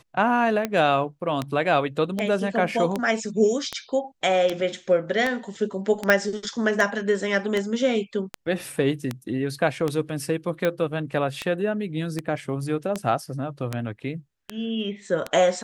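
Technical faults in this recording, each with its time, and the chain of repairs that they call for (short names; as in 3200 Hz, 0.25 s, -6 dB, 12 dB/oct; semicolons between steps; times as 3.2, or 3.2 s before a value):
tick 78 rpm -11 dBFS
6.1 pop -5 dBFS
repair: de-click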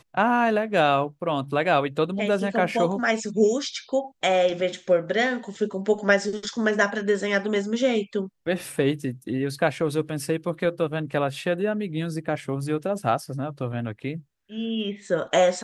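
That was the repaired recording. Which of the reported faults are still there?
none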